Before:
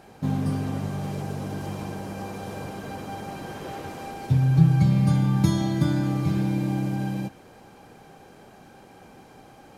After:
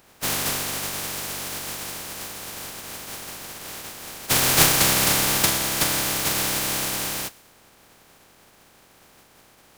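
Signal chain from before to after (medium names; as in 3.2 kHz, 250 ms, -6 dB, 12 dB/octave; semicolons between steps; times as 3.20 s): spectral contrast reduction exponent 0.17; tape noise reduction on one side only decoder only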